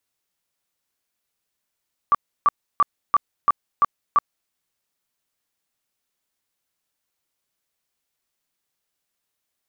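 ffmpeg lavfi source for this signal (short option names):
-f lavfi -i "aevalsrc='0.266*sin(2*PI*1160*mod(t,0.34))*lt(mod(t,0.34),31/1160)':d=2.38:s=44100"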